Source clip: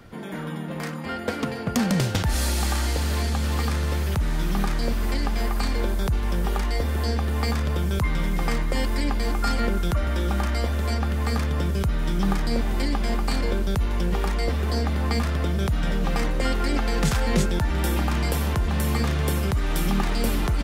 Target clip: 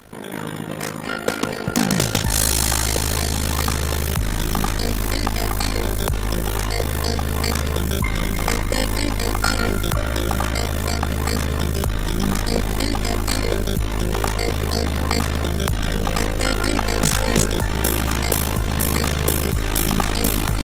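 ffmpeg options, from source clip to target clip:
-filter_complex "[0:a]bass=f=250:g=-4,treble=f=4000:g=8,bandreject=f=4700:w=12,acrossover=split=770|2100[s0][s1][s2];[s2]volume=10,asoftclip=hard,volume=0.1[s3];[s0][s1][s3]amix=inputs=3:normalize=0,tremolo=f=53:d=0.947,aecho=1:1:217|434|651:0.0841|0.0387|0.0178,volume=2.82" -ar 48000 -c:a libopus -b:a 32k

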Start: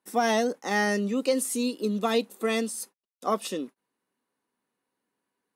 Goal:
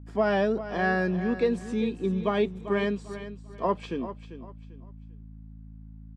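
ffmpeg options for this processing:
-filter_complex "[0:a]aeval=exprs='val(0)+0.00708*(sin(2*PI*60*n/s)+sin(2*PI*2*60*n/s)/2+sin(2*PI*3*60*n/s)/3+sin(2*PI*4*60*n/s)/4+sin(2*PI*5*60*n/s)/5)':c=same,asplit=2[s0][s1];[s1]aecho=0:1:355|710|1065:0.237|0.0664|0.0186[s2];[s0][s2]amix=inputs=2:normalize=0,asetrate=39690,aresample=44100,lowpass=2300"

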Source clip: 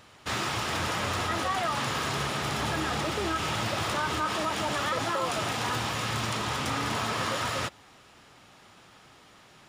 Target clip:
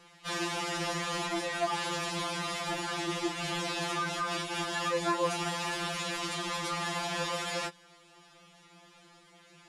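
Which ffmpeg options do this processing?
-af "lowpass=f=12000:w=0.5412,lowpass=f=12000:w=1.3066,equalizer=f=1300:t=o:w=0.77:g=-2.5,afftfilt=real='re*2.83*eq(mod(b,8),0)':imag='im*2.83*eq(mod(b,8),0)':win_size=2048:overlap=0.75"

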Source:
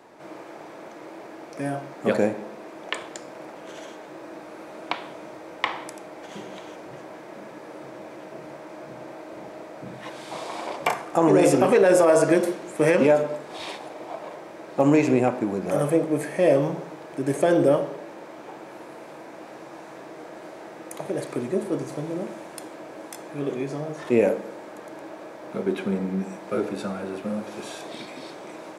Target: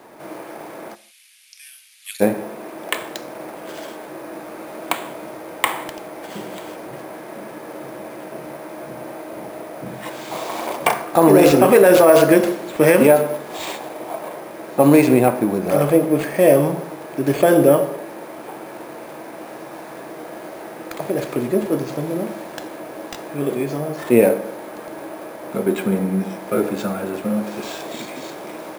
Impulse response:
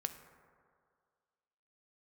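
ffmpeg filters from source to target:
-filter_complex "[0:a]acrusher=samples=4:mix=1:aa=0.000001,asplit=3[s0][s1][s2];[s0]afade=t=out:st=0.94:d=0.02[s3];[s1]asuperpass=centerf=6000:order=8:qfactor=0.67,afade=t=in:st=0.94:d=0.02,afade=t=out:st=2.2:d=0.02[s4];[s2]afade=t=in:st=2.2:d=0.02[s5];[s3][s4][s5]amix=inputs=3:normalize=0,asplit=2[s6][s7];[1:a]atrim=start_sample=2205,afade=t=out:st=0.29:d=0.01,atrim=end_sample=13230,asetrate=61740,aresample=44100[s8];[s7][s8]afir=irnorm=-1:irlink=0,volume=0.891[s9];[s6][s9]amix=inputs=2:normalize=0,volume=1.33"

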